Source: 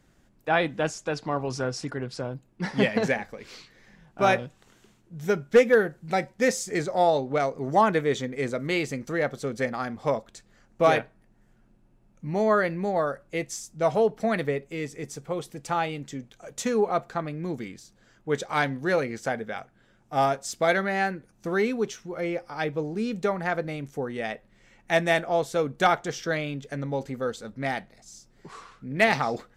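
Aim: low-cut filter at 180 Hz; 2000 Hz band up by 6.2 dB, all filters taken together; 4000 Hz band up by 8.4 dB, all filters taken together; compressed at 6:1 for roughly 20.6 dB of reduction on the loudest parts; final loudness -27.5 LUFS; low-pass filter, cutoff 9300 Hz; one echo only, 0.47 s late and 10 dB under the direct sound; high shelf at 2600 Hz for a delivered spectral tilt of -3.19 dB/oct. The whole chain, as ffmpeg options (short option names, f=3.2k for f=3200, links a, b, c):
-af "highpass=180,lowpass=9.3k,equalizer=f=2k:t=o:g=4,highshelf=f=2.6k:g=6.5,equalizer=f=4k:t=o:g=4,acompressor=threshold=-35dB:ratio=6,aecho=1:1:470:0.316,volume=11dB"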